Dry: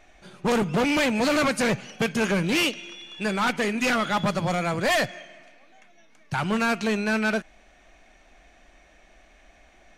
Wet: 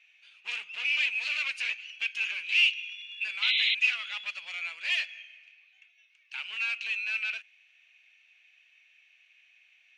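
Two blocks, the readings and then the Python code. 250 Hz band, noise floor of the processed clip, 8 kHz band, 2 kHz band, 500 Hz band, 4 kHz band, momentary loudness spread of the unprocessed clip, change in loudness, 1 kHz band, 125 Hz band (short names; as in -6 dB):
under -40 dB, -64 dBFS, -15.0 dB, -1.0 dB, under -35 dB, +1.5 dB, 9 LU, -4.0 dB, -23.0 dB, under -40 dB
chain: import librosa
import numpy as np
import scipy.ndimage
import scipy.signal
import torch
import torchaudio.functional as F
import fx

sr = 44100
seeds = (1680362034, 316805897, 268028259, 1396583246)

y = fx.ladder_bandpass(x, sr, hz=2800.0, resonance_pct=75)
y = fx.spec_paint(y, sr, seeds[0], shape='noise', start_s=3.42, length_s=0.33, low_hz=2000.0, high_hz=4100.0, level_db=-30.0)
y = y * librosa.db_to_amplitude(4.0)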